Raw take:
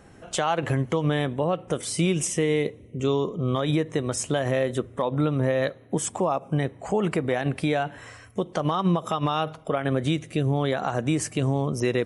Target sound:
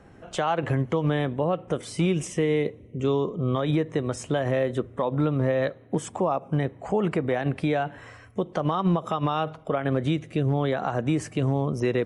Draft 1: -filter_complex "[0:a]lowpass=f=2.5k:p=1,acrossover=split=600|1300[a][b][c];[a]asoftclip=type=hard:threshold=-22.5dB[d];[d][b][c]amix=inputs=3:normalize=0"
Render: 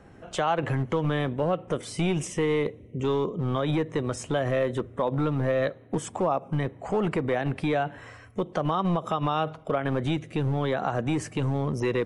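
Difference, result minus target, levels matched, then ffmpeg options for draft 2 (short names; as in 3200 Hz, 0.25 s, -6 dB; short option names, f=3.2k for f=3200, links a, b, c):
hard clip: distortion +20 dB
-filter_complex "[0:a]lowpass=f=2.5k:p=1,acrossover=split=600|1300[a][b][c];[a]asoftclip=type=hard:threshold=-16dB[d];[d][b][c]amix=inputs=3:normalize=0"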